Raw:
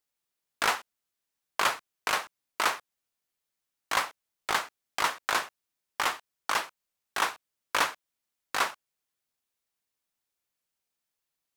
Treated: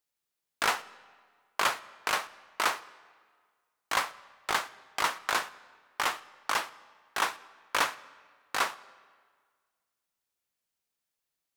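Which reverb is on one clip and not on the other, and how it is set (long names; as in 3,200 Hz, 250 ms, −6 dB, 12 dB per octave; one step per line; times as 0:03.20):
comb and all-pass reverb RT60 1.7 s, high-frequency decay 0.8×, pre-delay 5 ms, DRR 18.5 dB
level −1 dB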